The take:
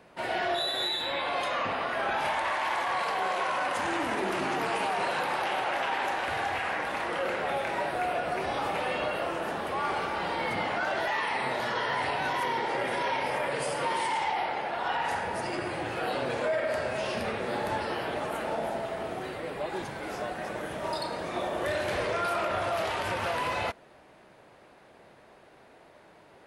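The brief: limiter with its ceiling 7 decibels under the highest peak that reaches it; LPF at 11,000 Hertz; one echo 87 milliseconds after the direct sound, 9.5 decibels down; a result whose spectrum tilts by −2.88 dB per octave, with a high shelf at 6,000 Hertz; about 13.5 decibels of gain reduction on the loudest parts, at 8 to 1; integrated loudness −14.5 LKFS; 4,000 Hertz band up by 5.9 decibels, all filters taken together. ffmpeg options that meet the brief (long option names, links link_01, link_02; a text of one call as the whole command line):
ffmpeg -i in.wav -af "lowpass=11000,equalizer=frequency=4000:width_type=o:gain=4.5,highshelf=frequency=6000:gain=8.5,acompressor=threshold=-36dB:ratio=8,alimiter=level_in=8dB:limit=-24dB:level=0:latency=1,volume=-8dB,aecho=1:1:87:0.335,volume=25.5dB" out.wav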